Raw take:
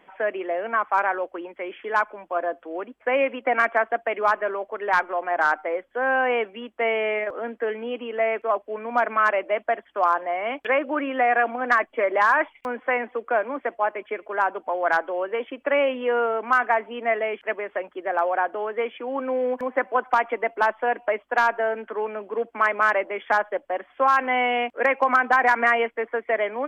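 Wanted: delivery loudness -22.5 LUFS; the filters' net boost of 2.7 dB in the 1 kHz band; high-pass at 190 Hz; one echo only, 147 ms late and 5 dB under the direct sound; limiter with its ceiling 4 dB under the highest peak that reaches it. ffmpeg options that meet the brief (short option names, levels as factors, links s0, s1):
-af "highpass=190,equalizer=f=1000:t=o:g=3.5,alimiter=limit=0.335:level=0:latency=1,aecho=1:1:147:0.562,volume=0.944"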